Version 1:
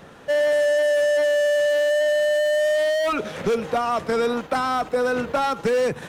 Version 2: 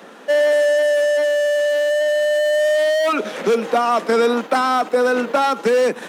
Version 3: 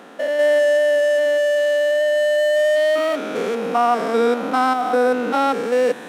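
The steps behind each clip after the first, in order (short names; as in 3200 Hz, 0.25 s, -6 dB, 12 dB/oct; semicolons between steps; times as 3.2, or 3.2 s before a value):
steep high-pass 200 Hz 48 dB/oct; vocal rider 2 s; gain +3.5 dB
stepped spectrum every 0.2 s; bell 5500 Hz -2.5 dB; small resonant body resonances 280/740 Hz, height 7 dB, ringing for 85 ms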